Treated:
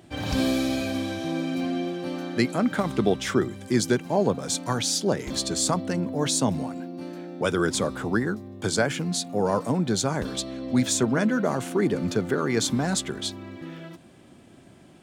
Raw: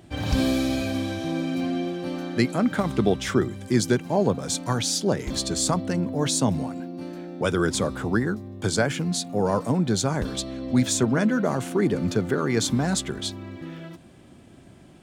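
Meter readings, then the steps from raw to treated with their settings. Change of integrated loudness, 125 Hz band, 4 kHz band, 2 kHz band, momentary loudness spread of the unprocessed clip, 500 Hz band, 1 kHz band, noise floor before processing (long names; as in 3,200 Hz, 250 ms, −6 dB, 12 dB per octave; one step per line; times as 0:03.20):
−1.0 dB, −3.0 dB, 0.0 dB, 0.0 dB, 8 LU, −0.5 dB, 0.0 dB, −50 dBFS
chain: low-shelf EQ 92 Hz −10 dB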